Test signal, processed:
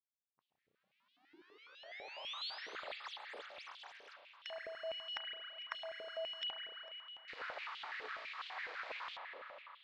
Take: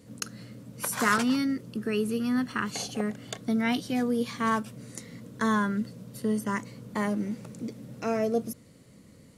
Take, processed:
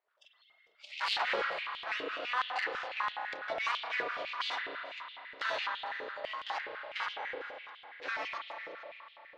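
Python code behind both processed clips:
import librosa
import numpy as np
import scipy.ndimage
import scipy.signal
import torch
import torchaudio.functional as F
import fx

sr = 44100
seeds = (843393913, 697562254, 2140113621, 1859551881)

p1 = scipy.signal.medfilt(x, 15)
p2 = fx.spec_gate(p1, sr, threshold_db=-20, keep='weak')
p3 = scipy.signal.sosfilt(scipy.signal.butter(4, 4300.0, 'lowpass', fs=sr, output='sos'), p2)
p4 = fx.noise_reduce_blind(p3, sr, reduce_db=22)
p5 = np.clip(p4, -10.0 ** (-38.5 / 20.0), 10.0 ** (-38.5 / 20.0))
p6 = p4 + (p5 * librosa.db_to_amplitude(-12.0))
p7 = fx.tube_stage(p6, sr, drive_db=26.0, bias=0.55)
p8 = p7 + 10.0 ** (-18.0 / 20.0) * np.pad(p7, (int(450 * sr / 1000.0), 0))[:len(p7)]
p9 = fx.rev_spring(p8, sr, rt60_s=3.8, pass_ms=(32,), chirp_ms=25, drr_db=1.0)
p10 = fx.filter_held_highpass(p9, sr, hz=12.0, low_hz=460.0, high_hz=3200.0)
y = p10 * librosa.db_to_amplitude(4.5)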